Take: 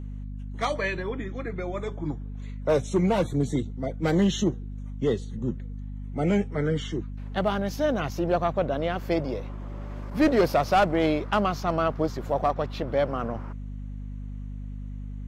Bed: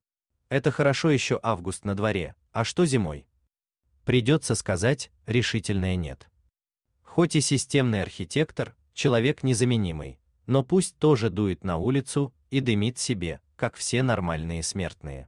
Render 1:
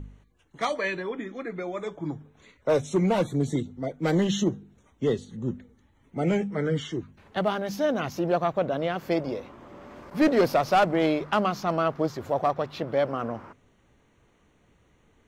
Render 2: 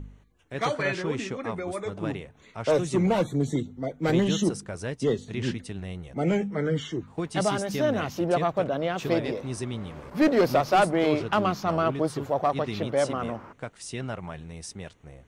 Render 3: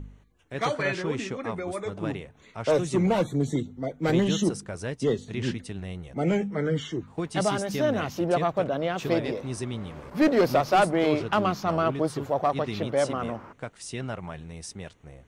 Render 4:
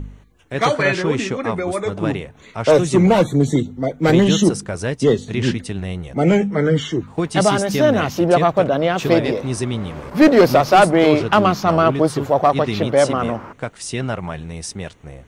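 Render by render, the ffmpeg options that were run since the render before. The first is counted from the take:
-af "bandreject=f=50:t=h:w=4,bandreject=f=100:t=h:w=4,bandreject=f=150:t=h:w=4,bandreject=f=200:t=h:w=4,bandreject=f=250:t=h:w=4"
-filter_complex "[1:a]volume=0.316[s0];[0:a][s0]amix=inputs=2:normalize=0"
-af anull
-af "volume=3.16,alimiter=limit=0.708:level=0:latency=1"

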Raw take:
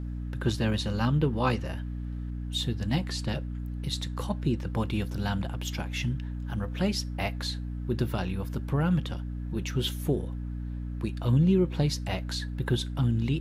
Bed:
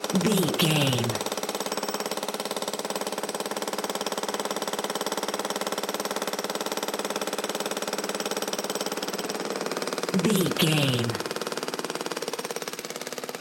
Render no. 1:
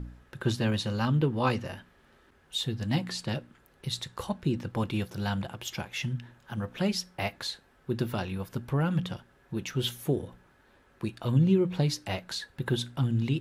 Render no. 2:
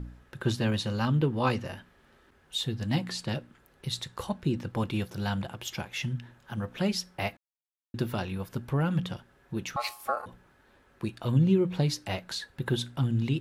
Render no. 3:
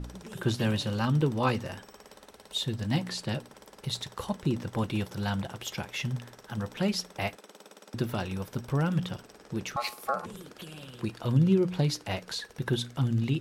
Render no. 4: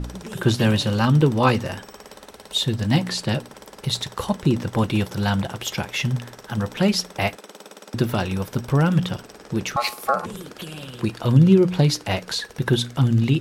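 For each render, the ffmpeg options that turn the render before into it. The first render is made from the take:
-af "bandreject=f=60:t=h:w=4,bandreject=f=120:t=h:w=4,bandreject=f=180:t=h:w=4,bandreject=f=240:t=h:w=4,bandreject=f=300:t=h:w=4"
-filter_complex "[0:a]asettb=1/sr,asplit=3[s0][s1][s2];[s0]atrim=end=9.764[s3];[s1]atrim=start=9.76:end=10.26,asetpts=PTS-STARTPTS,afade=t=in:d=0.004:c=qsin,afade=t=out:st=0.496:d=0.004:c=qsin,aeval=exprs='val(0)*sin(2*PI*960*n/s)':c=same[s4];[s2]atrim=start=10.256[s5];[s3][s4]acrossfade=d=0.004:c1=hsin:c2=qsin[s6];[s6][s5]acrossfade=d=0.004:c1=qsin:c2=hsin,asplit=3[s7][s8][s9];[s7]atrim=end=7.37,asetpts=PTS-STARTPTS,afade=t=out:st=7.366:d=0.004:c=hsin[s10];[s8]atrim=start=7.37:end=7.94,asetpts=PTS-STARTPTS,volume=0[s11];[s9]atrim=start=7.94,asetpts=PTS-STARTPTS,afade=t=in:d=0.004:c=hsin[s12];[s10][s11][s12]concat=n=3:v=0:a=1"
-filter_complex "[1:a]volume=0.0794[s0];[0:a][s0]amix=inputs=2:normalize=0"
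-af "volume=2.82"

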